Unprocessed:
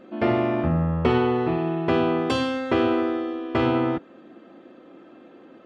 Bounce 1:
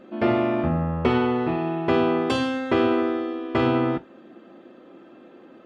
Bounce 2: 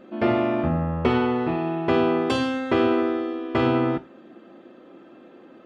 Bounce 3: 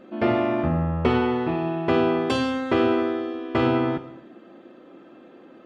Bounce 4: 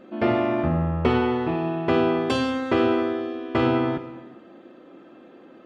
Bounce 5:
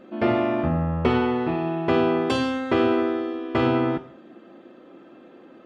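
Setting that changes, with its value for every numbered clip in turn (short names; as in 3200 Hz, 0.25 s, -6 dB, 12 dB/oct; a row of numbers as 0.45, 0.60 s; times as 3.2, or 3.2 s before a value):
non-linear reverb, gate: 80, 120, 340, 510, 210 ms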